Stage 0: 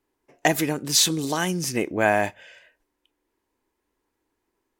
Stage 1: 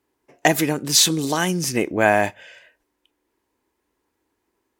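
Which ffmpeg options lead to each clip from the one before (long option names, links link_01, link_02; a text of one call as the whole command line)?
ffmpeg -i in.wav -af "highpass=43,volume=3.5dB" out.wav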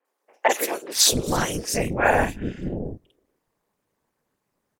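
ffmpeg -i in.wav -filter_complex "[0:a]afftfilt=real='hypot(re,im)*cos(2*PI*random(0))':imag='hypot(re,im)*sin(2*PI*random(1))':win_size=512:overlap=0.75,aeval=exprs='val(0)*sin(2*PI*110*n/s)':channel_layout=same,acrossover=split=350|2800[link_01][link_02][link_03];[link_03]adelay=50[link_04];[link_01]adelay=670[link_05];[link_05][link_02][link_04]amix=inputs=3:normalize=0,volume=7.5dB" out.wav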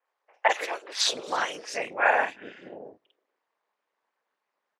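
ffmpeg -i in.wav -af "highpass=720,lowpass=3500" out.wav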